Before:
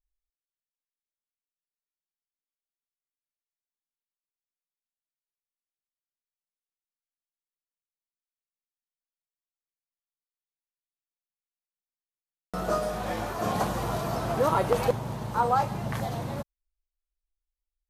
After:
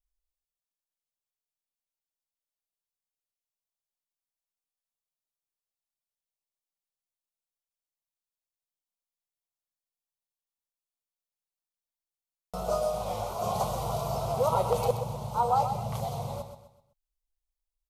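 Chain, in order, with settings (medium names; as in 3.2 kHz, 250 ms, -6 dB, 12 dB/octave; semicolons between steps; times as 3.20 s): static phaser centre 710 Hz, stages 4; feedback delay 127 ms, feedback 37%, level -9 dB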